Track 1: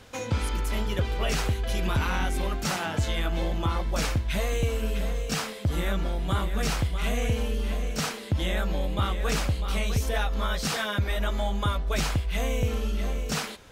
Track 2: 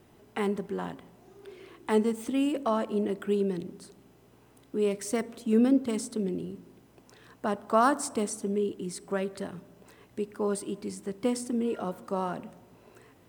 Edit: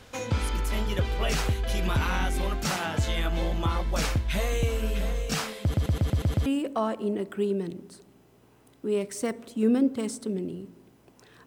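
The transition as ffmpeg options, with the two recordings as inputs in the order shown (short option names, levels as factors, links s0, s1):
-filter_complex "[0:a]apad=whole_dur=11.46,atrim=end=11.46,asplit=7[s0][s1][s2][s3][s4][s5][s6];[s0]atrim=end=5.742[s7];[s1]atrim=start=5.618:end=5.742[s8];[s2]atrim=start=5.618:end=5.742[s9];[s3]atrim=start=5.618:end=5.742[s10];[s4]atrim=start=5.618:end=5.742[s11];[s5]atrim=start=5.618:end=5.742[s12];[s6]atrim=start=5.618:end=5.742[s13];[1:a]atrim=start=2.358:end=7.36[s14];[s7][s8]acrossfade=d=0.004:c1=hsin:c2=hsin[s15];[s15][s9]acrossfade=d=0.004:c1=hsin:c2=hsin[s16];[s16][s10]acrossfade=d=0.004:c1=hsin:c2=hsin[s17];[s17][s11]acrossfade=d=0.004:c1=hsin:c2=hsin[s18];[s18][s12]acrossfade=d=0.004:c1=hsin:c2=hsin[s19];[s19][s13]acrossfade=d=0.004:c1=hsin:c2=hsin[s20];[s20][s14]acrossfade=d=0.004:c1=hsin:c2=hsin"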